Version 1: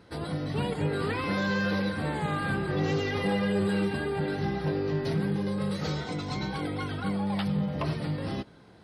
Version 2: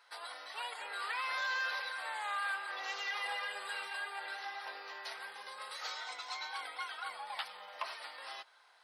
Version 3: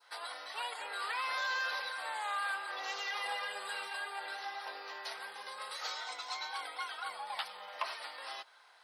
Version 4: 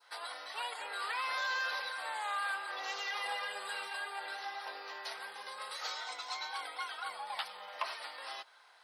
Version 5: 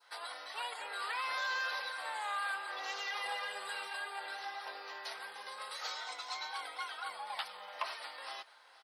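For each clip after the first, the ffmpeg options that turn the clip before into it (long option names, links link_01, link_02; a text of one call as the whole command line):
ffmpeg -i in.wav -af "highpass=frequency=850:width=0.5412,highpass=frequency=850:width=1.3066,volume=-2.5dB" out.wav
ffmpeg -i in.wav -af "adynamicequalizer=threshold=0.00316:dfrequency=2000:dqfactor=1:tfrequency=2000:tqfactor=1:attack=5:release=100:ratio=0.375:range=2:mode=cutabove:tftype=bell,volume=3dB" out.wav
ffmpeg -i in.wav -af anull out.wav
ffmpeg -i in.wav -af "aecho=1:1:470:0.106,volume=-1dB" out.wav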